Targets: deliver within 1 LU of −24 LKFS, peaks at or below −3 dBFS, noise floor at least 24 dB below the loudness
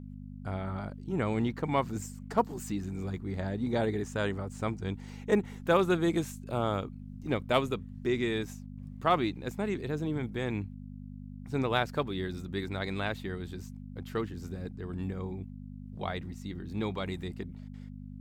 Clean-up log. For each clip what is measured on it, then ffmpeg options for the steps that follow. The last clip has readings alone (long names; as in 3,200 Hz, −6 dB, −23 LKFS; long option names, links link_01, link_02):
mains hum 50 Hz; hum harmonics up to 250 Hz; level of the hum −41 dBFS; integrated loudness −33.0 LKFS; sample peak −11.0 dBFS; target loudness −24.0 LKFS
→ -af "bandreject=frequency=50:width_type=h:width=4,bandreject=frequency=100:width_type=h:width=4,bandreject=frequency=150:width_type=h:width=4,bandreject=frequency=200:width_type=h:width=4,bandreject=frequency=250:width_type=h:width=4"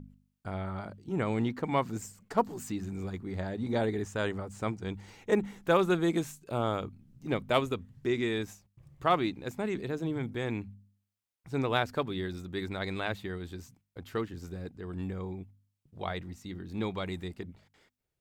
mains hum none found; integrated loudness −33.5 LKFS; sample peak −11.5 dBFS; target loudness −24.0 LKFS
→ -af "volume=9.5dB,alimiter=limit=-3dB:level=0:latency=1"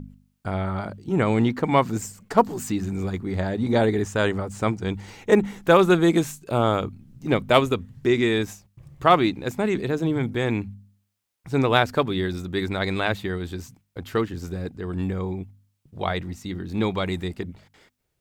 integrated loudness −24.0 LKFS; sample peak −3.0 dBFS; background noise floor −74 dBFS